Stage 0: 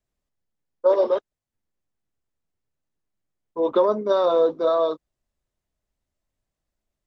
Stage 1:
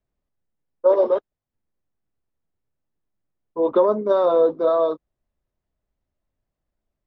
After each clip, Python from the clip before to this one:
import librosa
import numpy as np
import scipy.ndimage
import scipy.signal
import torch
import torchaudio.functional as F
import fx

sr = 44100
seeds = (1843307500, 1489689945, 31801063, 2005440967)

y = fx.lowpass(x, sr, hz=1400.0, slope=6)
y = y * librosa.db_to_amplitude(2.5)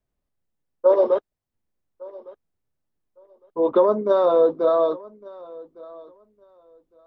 y = fx.echo_feedback(x, sr, ms=1158, feedback_pct=19, wet_db=-22.0)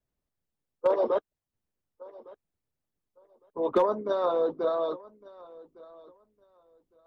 y = fx.hpss(x, sr, part='harmonic', gain_db=-10)
y = np.clip(y, -10.0 ** (-15.5 / 20.0), 10.0 ** (-15.5 / 20.0))